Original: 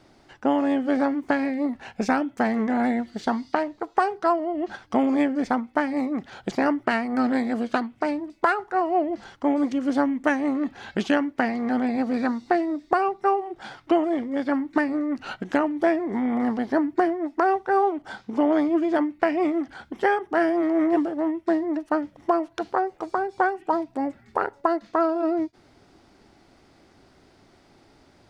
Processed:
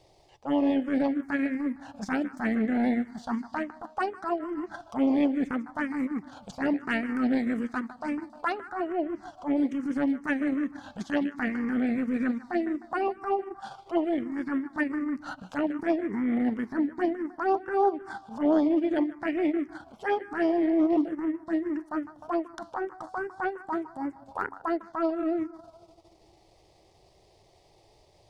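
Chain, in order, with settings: two-band feedback delay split 310 Hz, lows 244 ms, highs 153 ms, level -14 dB; transient shaper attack -11 dB, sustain -7 dB; touch-sensitive phaser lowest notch 240 Hz, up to 4.2 kHz, full sweep at -15 dBFS

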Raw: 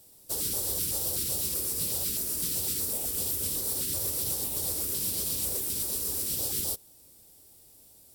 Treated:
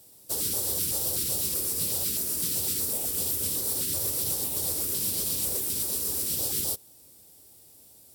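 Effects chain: high-pass 67 Hz; trim +2 dB

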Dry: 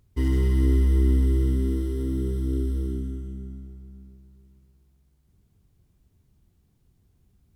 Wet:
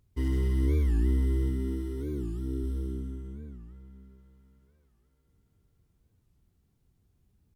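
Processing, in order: 1.49–2.64 s: comb of notches 530 Hz; feedback echo behind a band-pass 498 ms, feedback 60%, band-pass 1.2 kHz, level -9 dB; warped record 45 rpm, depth 250 cents; trim -5.5 dB

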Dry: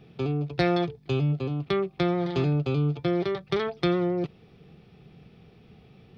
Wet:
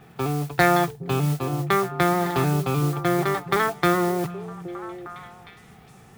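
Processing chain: high-order bell 1.2 kHz +11 dB; modulation noise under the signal 17 dB; repeats whose band climbs or falls 409 ms, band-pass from 150 Hz, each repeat 1.4 oct, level -8 dB; trim +1.5 dB

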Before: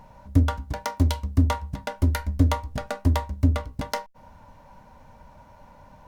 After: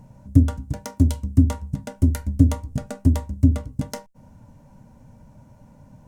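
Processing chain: graphic EQ 125/250/1000/2000/4000/8000 Hz +11/+7/-7/-4/-6/+8 dB; trim -2.5 dB

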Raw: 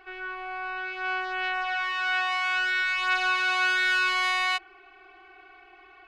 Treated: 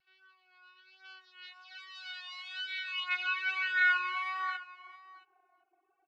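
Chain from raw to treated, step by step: high-pass 100 Hz; tone controls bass +13 dB, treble +1 dB; speakerphone echo 380 ms, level -9 dB; on a send at -6 dB: reverberation, pre-delay 3 ms; on the sum: reverb removal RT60 1.3 s; band-pass sweep 4.4 kHz -> 550 Hz, 2.15–5.95 s; vibrato 1.2 Hz 34 cents; delay 673 ms -12 dB; upward expansion 1.5:1, over -52 dBFS

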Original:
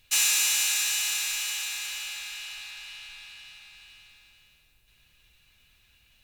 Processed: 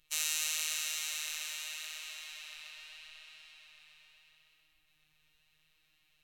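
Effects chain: robot voice 200 Hz; formant-preserving pitch shift -4.5 st; tape echo 129 ms, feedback 79%, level -4.5 dB, low-pass 5.6 kHz; trim -8.5 dB

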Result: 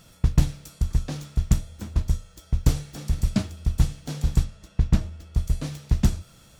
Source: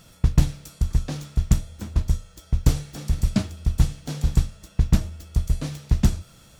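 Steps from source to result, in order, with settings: 4.43–5.36 s: treble shelf 9.9 kHz -> 5.6 kHz -11 dB; trim -1.5 dB

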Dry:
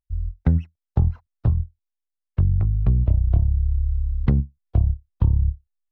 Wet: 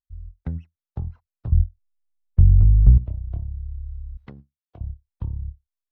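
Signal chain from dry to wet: 1.52–2.98 s: tilt EQ -4.5 dB/octave; 4.17–4.81 s: high-pass 600 Hz 6 dB/octave; trim -11 dB

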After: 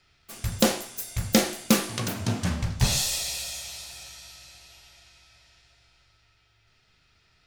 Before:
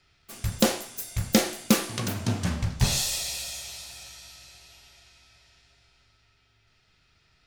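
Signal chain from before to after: hum notches 50/100/150/200/250/300/350/400 Hz; trim +1 dB

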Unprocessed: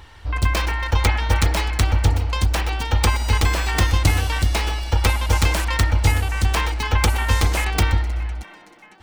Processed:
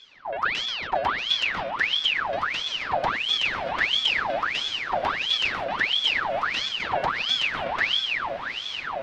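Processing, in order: distance through air 340 m; echo that smears into a reverb 993 ms, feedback 61%, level -7 dB; ring modulator with a swept carrier 2 kHz, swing 70%, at 1.5 Hz; trim -4.5 dB

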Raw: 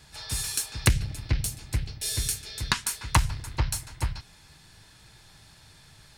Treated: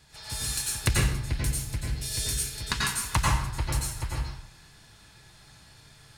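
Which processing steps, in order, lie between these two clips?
plate-style reverb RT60 0.71 s, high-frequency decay 0.7×, pre-delay 80 ms, DRR -4.5 dB; trim -5 dB

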